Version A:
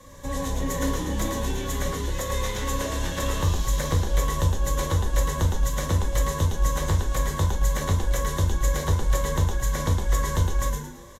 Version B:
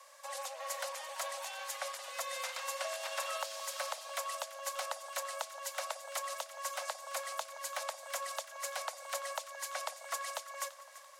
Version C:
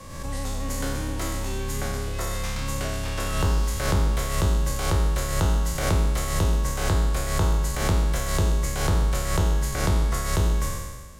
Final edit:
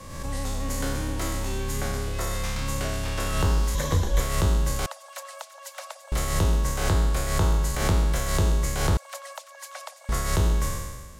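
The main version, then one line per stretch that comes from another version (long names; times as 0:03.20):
C
0:03.75–0:04.20: punch in from A
0:04.86–0:06.12: punch in from B
0:08.97–0:10.09: punch in from B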